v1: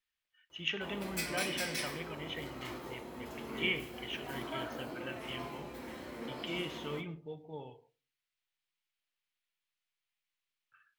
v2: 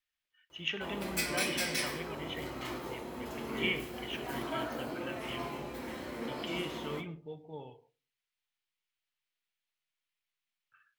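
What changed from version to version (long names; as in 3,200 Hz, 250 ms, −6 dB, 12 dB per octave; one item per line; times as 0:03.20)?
background +4.0 dB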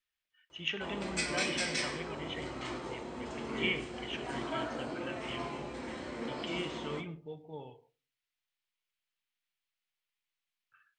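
background: add linear-phase brick-wall low-pass 9,100 Hz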